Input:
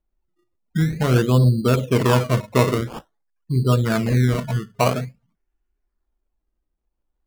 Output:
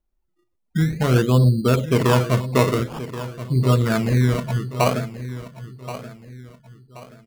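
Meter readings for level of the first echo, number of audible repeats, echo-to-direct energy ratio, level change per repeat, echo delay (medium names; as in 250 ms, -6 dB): -13.5 dB, 3, -13.0 dB, -9.0 dB, 1078 ms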